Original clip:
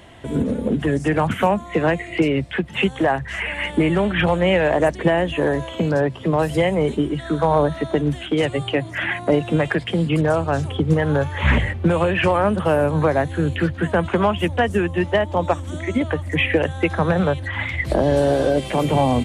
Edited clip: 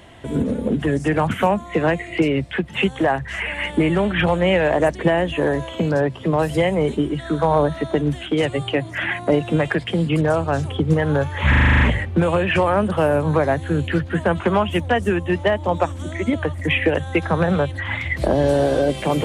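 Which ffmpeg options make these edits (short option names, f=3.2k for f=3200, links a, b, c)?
-filter_complex "[0:a]asplit=9[a][b][c][d][e][f][g][h][i];[a]atrim=end=11.532[j];[b]atrim=start=11.488:end=11.532[k];[c]atrim=start=11.488:end=11.532[l];[d]atrim=start=11.488:end=11.532[m];[e]atrim=start=11.488:end=11.532[n];[f]atrim=start=11.488:end=11.532[o];[g]atrim=start=11.488:end=11.532[p];[h]atrim=start=11.488:end=11.532[q];[i]atrim=start=11.488[r];[j][k]acrossfade=d=0.004:c1=hsin:c2=hsin[s];[s][l]acrossfade=d=0.004:c1=hsin:c2=hsin[t];[t][m]acrossfade=d=0.004:c1=hsin:c2=hsin[u];[u][n]acrossfade=d=0.004:c1=hsin:c2=hsin[v];[v][o]acrossfade=d=0.004:c1=hsin:c2=hsin[w];[w][p]acrossfade=d=0.004:c1=hsin:c2=hsin[x];[x][q]acrossfade=d=0.004:c1=hsin:c2=hsin[y];[y][r]acrossfade=d=0.004:c1=hsin:c2=hsin"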